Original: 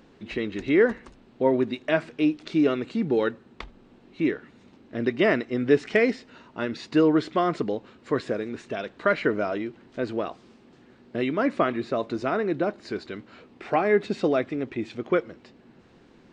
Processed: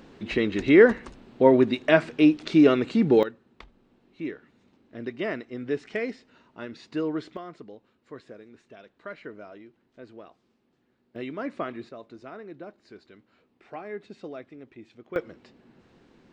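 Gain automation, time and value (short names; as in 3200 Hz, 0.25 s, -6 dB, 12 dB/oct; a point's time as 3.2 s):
+4.5 dB
from 3.23 s -9 dB
from 7.37 s -17 dB
from 11.16 s -9 dB
from 11.89 s -16 dB
from 15.16 s -3 dB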